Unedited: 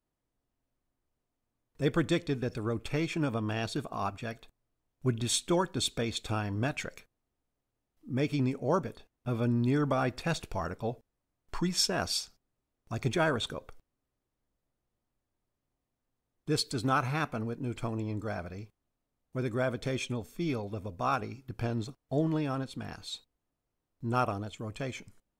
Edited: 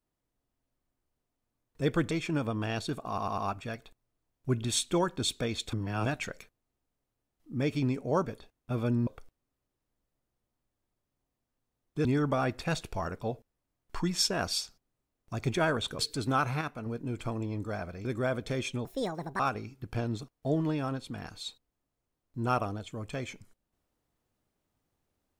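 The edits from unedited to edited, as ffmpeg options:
-filter_complex "[0:a]asplit=15[a][b][c][d][e][f][g][h][i][j][k][l][m][n][o];[a]atrim=end=2.112[p];[b]atrim=start=2.978:end=4.052[q];[c]atrim=start=3.948:end=4.052[r];[d]atrim=start=3.948:end=4.052[s];[e]atrim=start=3.948:end=6.302[t];[f]atrim=start=6.298:end=6.632,asetpts=PTS-STARTPTS,areverse[u];[g]atrim=start=6.628:end=9.642[v];[h]atrim=start=13.578:end=16.562[w];[i]atrim=start=9.638:end=13.582[x];[j]atrim=start=16.558:end=17.182[y];[k]atrim=start=17.178:end=17.432,asetpts=PTS-STARTPTS,volume=-5dB[z];[l]atrim=start=17.428:end=18.622[aa];[m]atrim=start=19.408:end=20.214[ab];[n]atrim=start=20.21:end=21.06,asetpts=PTS-STARTPTS,asetrate=68796,aresample=44100[ac];[o]atrim=start=21.056[ad];[p][q]acrossfade=d=0.004:c1=hsin:c2=hsin[ae];[ae][r]acrossfade=d=0.004:c1=hsin:c2=hsin[af];[af][s]acrossfade=d=0.004:c1=hsin:c2=hsin[ag];[ag][t]acrossfade=d=0.004:c1=hsin:c2=hsin[ah];[ah][u]acrossfade=d=0.004:c1=hsin:c2=hsin[ai];[ai][v]acrossfade=d=0.004:c1=hsin:c2=hsin[aj];[aj][w]acrossfade=d=0.004:c1=hsin:c2=hsin[ak];[ak][x]acrossfade=d=0.004:c1=hsin:c2=hsin[al];[al][y]acrossfade=d=0.004:c1=hsin:c2=hsin[am];[am][z]acrossfade=d=0.004:c1=hsin:c2=hsin[an];[an][aa]acrossfade=d=0.004:c1=hsin:c2=hsin[ao];[ao][ab]acrossfade=d=0.004:c1=hsin:c2=hsin[ap];[ap][ac]acrossfade=d=0.004:c1=hsin:c2=hsin[aq];[aq][ad]acrossfade=d=0.004:c1=hsin:c2=hsin"

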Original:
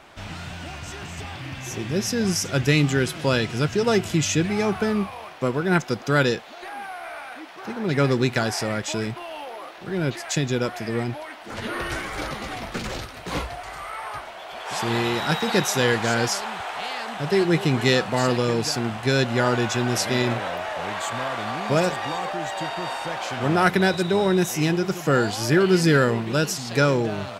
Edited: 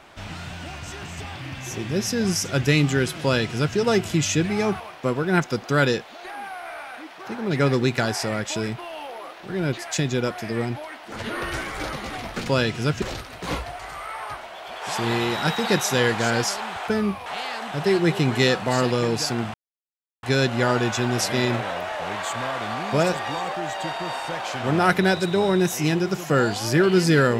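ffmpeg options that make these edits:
-filter_complex "[0:a]asplit=7[a][b][c][d][e][f][g];[a]atrim=end=4.802[h];[b]atrim=start=5.178:end=12.862[i];[c]atrim=start=3.228:end=3.772[j];[d]atrim=start=12.858:end=16.722[k];[e]atrim=start=4.798:end=5.182[l];[f]atrim=start=16.718:end=19,asetpts=PTS-STARTPTS,afade=t=out:st=2.278:d=0.004:c=hsin,apad=pad_dur=0.69[m];[g]atrim=start=19,asetpts=PTS-STARTPTS,afade=t=in:d=0.004:c=hsin[n];[h][i]acrossfade=d=0.004:c1=hsin:c2=hsin[o];[o][j]acrossfade=d=0.004:c1=hsin:c2=hsin[p];[p][k]acrossfade=d=0.004:c1=hsin:c2=hsin[q];[q][l]acrossfade=d=0.004:c1=hsin:c2=hsin[r];[m][n]concat=n=2:v=0:a=1[s];[r][s]acrossfade=d=0.004:c1=hsin:c2=hsin"

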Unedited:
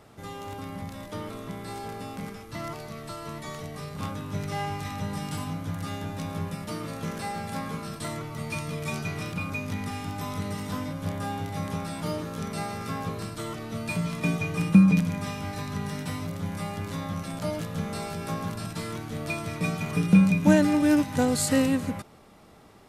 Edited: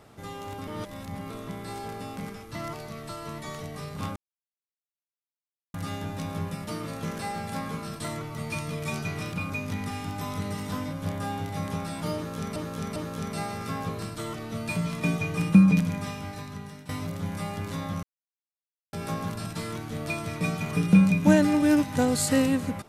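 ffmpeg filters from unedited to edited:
-filter_complex "[0:a]asplit=10[a][b][c][d][e][f][g][h][i][j];[a]atrim=end=0.672[k];[b]atrim=start=0.668:end=1.302,asetpts=PTS-STARTPTS,areverse[l];[c]atrim=start=1.298:end=4.16,asetpts=PTS-STARTPTS,afade=t=out:st=2.858:d=0.004:c=hsin[m];[d]atrim=start=4.16:end=5.74,asetpts=PTS-STARTPTS,volume=0[n];[e]atrim=start=5.74:end=12.562,asetpts=PTS-STARTPTS,afade=t=in:d=0.004:c=hsin[o];[f]atrim=start=12.158:end=12.562[p];[g]atrim=start=12.158:end=16.09,asetpts=PTS-STARTPTS,afade=t=out:st=2.952:d=0.98:silence=0.188365[q];[h]atrim=start=16.09:end=17.23,asetpts=PTS-STARTPTS,afade=t=in:d=0.004:c=hsin:silence=0.188365,afade=t=out:st=1.136:d=0.004:c=hsin[r];[i]atrim=start=17.23:end=18.13,asetpts=PTS-STARTPTS,volume=0[s];[j]atrim=start=18.13,asetpts=PTS-STARTPTS,afade=t=in:d=0.004:c=hsin[t];[k][l]acrossfade=d=0.004:c1=hsin:c2=hsin[u];[m][n][o]concat=n=3:v=0:a=1[v];[u][v]acrossfade=d=0.004:c1=hsin:c2=hsin[w];[w][p]acrossfade=d=0.004:c1=hsin:c2=hsin[x];[q][r][s][t]concat=n=4:v=0:a=1[y];[x][y]acrossfade=d=0.004:c1=hsin:c2=hsin"

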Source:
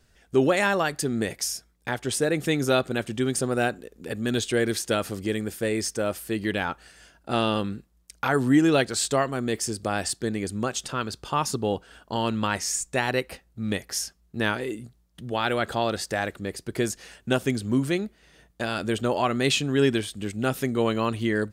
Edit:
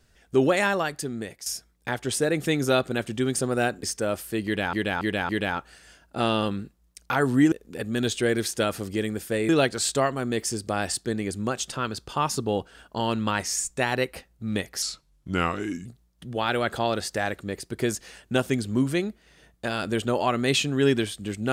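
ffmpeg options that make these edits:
-filter_complex "[0:a]asplit=10[a][b][c][d][e][f][g][h][i][j];[a]atrim=end=1.46,asetpts=PTS-STARTPTS,afade=t=out:st=0.59:d=0.87:silence=0.237137[k];[b]atrim=start=1.46:end=3.832,asetpts=PTS-STARTPTS,afade=t=in:d=0.004:c=hsin:silence=0.237137[l];[c]atrim=start=5.798:end=6.702[m];[d]atrim=start=6.418:end=6.702[n];[e]atrim=start=6.418:end=6.702[o];[f]atrim=start=6.418:end=8.652[p];[g]atrim=start=3.828:end=5.802[q];[h]atrim=start=8.648:end=13.984[r];[i]atrim=start=13.98:end=14.82,asetpts=PTS-STARTPTS,asetrate=35721,aresample=44100,atrim=end_sample=45733,asetpts=PTS-STARTPTS[s];[j]atrim=start=14.816[t];[k][l]concat=n=2:v=0:a=1[u];[u][m]acrossfade=d=0.004:c1=hsin:c2=hsin[v];[v][n]acrossfade=d=0.004:c1=hsin:c2=hsin[w];[w][o]acrossfade=d=0.004:c1=hsin:c2=hsin[x];[x][p]acrossfade=d=0.004:c1=hsin:c2=hsin[y];[y][q]acrossfade=d=0.004:c1=hsin:c2=hsin[z];[z][r]acrossfade=d=0.004:c1=hsin:c2=hsin[aa];[aa][s]acrossfade=d=0.004:c1=hsin:c2=hsin[ab];[ab][t]acrossfade=d=0.004:c1=hsin:c2=hsin"

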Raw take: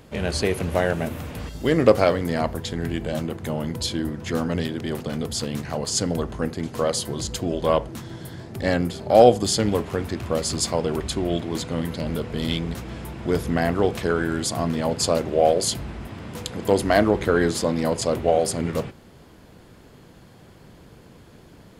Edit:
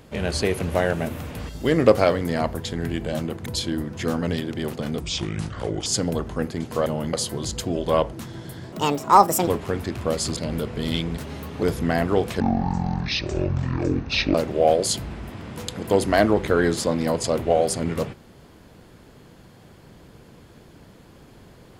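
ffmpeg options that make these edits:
-filter_complex "[0:a]asplit=13[a][b][c][d][e][f][g][h][i][j][k][l][m];[a]atrim=end=3.462[n];[b]atrim=start=3.728:end=5.274[o];[c]atrim=start=5.27:end=5.89,asetpts=PTS-STARTPTS,asetrate=31752,aresample=44100[p];[d]atrim=start=5.886:end=6.892[q];[e]atrim=start=3.458:end=3.732[r];[f]atrim=start=6.888:end=8.484[s];[g]atrim=start=8.48:end=9.72,asetpts=PTS-STARTPTS,asetrate=72765,aresample=44100[t];[h]atrim=start=9.716:end=10.612[u];[i]atrim=start=11.928:end=12.774[v];[j]atrim=start=12.77:end=13.3,asetpts=PTS-STARTPTS,asetrate=54684,aresample=44100,atrim=end_sample=18849,asetpts=PTS-STARTPTS[w];[k]atrim=start=13.296:end=14.074[x];[l]atrim=start=14.07:end=15.12,asetpts=PTS-STARTPTS,asetrate=23814,aresample=44100[y];[m]atrim=start=15.116[z];[n][o]acrossfade=d=0.004:c1=hsin:c2=hsin[aa];[aa][p]acrossfade=d=0.004:c1=hsin:c2=hsin[ab];[ab][q]acrossfade=d=0.004:c1=hsin:c2=hsin[ac];[ac][r]acrossfade=d=0.004:c1=hsin:c2=hsin[ad];[ad][s]acrossfade=d=0.004:c1=hsin:c2=hsin[ae];[ae][t]acrossfade=d=0.004:c1=hsin:c2=hsin[af];[af][u]acrossfade=d=0.004:c1=hsin:c2=hsin[ag];[ag][v]acrossfade=d=0.004:c1=hsin:c2=hsin[ah];[ah][w]acrossfade=d=0.004:c1=hsin:c2=hsin[ai];[ai][x]acrossfade=d=0.004:c1=hsin:c2=hsin[aj];[aj][y]acrossfade=d=0.004:c1=hsin:c2=hsin[ak];[ak][z]acrossfade=d=0.004:c1=hsin:c2=hsin"

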